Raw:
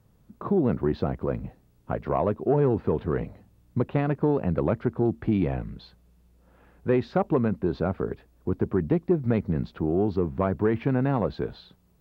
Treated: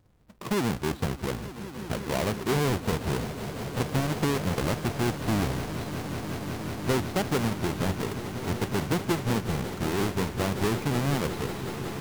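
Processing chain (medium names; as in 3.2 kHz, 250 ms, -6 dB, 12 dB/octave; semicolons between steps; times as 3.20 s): square wave that keeps the level; echo with a slow build-up 183 ms, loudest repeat 8, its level -15.5 dB; vibrato with a chosen wave saw up 3.3 Hz, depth 100 cents; trim -7.5 dB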